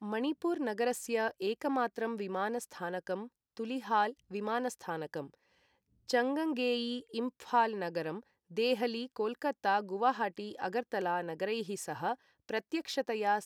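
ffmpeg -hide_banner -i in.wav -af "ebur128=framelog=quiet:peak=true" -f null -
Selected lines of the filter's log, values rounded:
Integrated loudness:
  I:         -34.6 LUFS
  Threshold: -44.8 LUFS
Loudness range:
  LRA:         3.0 LU
  Threshold: -54.9 LUFS
  LRA low:   -36.3 LUFS
  LRA high:  -33.4 LUFS
True peak:
  Peak:      -16.5 dBFS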